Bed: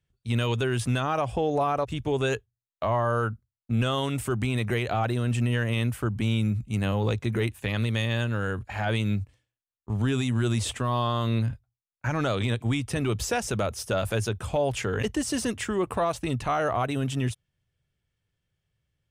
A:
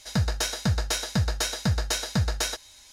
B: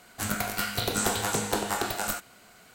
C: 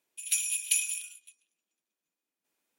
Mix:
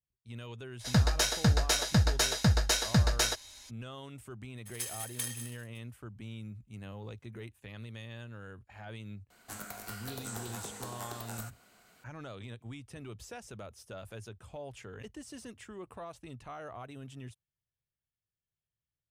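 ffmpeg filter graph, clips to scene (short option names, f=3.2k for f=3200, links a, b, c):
-filter_complex "[0:a]volume=-18.5dB[a];[3:a]aeval=exprs='val(0)*sgn(sin(2*PI*670*n/s))':c=same[b];[2:a]acrossover=split=320|1800|4800[c][d][e][f];[c]acompressor=threshold=-44dB:ratio=3[g];[d]acompressor=threshold=-38dB:ratio=3[h];[e]acompressor=threshold=-51dB:ratio=3[i];[f]acompressor=threshold=-35dB:ratio=3[j];[g][h][i][j]amix=inputs=4:normalize=0[k];[1:a]atrim=end=2.92,asetpts=PTS-STARTPTS,volume=-0.5dB,afade=t=in:d=0.02,afade=t=out:st=2.9:d=0.02,adelay=790[l];[b]atrim=end=2.78,asetpts=PTS-STARTPTS,volume=-10dB,afade=t=in:d=0.004:c=hsin,afade=t=out:st=2.776:d=0.004:c=hsin,adelay=4480[m];[k]atrim=end=2.74,asetpts=PTS-STARTPTS,volume=-8.5dB,afade=t=in:d=0.004:c=hsin,afade=t=out:st=2.736:d=0.004:c=hsin,adelay=410130S[n];[a][l][m][n]amix=inputs=4:normalize=0"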